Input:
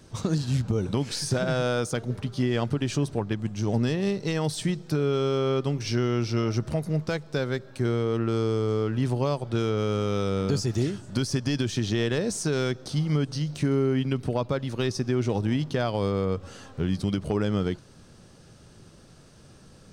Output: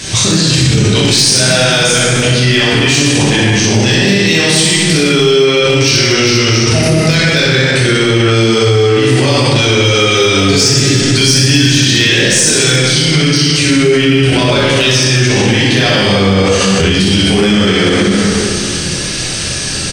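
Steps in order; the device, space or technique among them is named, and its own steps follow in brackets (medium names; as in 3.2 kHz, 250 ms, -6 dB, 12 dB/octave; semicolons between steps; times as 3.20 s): high-order bell 4.1 kHz +15 dB 2.7 oct; 9.67–11.65 s: comb 7.2 ms, depth 68%; early reflections 25 ms -6.5 dB, 62 ms -3.5 dB; plate-style reverb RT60 2.3 s, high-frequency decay 0.6×, DRR -6.5 dB; loud club master (compression 2.5:1, threshold -21 dBFS, peak gain reduction 10.5 dB; hard clipper -12.5 dBFS, distortion -29 dB; loudness maximiser +20.5 dB); trim -1 dB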